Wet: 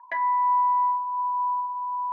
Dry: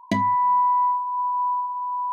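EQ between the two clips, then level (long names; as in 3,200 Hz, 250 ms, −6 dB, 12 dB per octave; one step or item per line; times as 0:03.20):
high-pass filter 590 Hz 24 dB per octave
low-pass with resonance 1,700 Hz, resonance Q 13
parametric band 930 Hz +4 dB 0.39 octaves
−9.0 dB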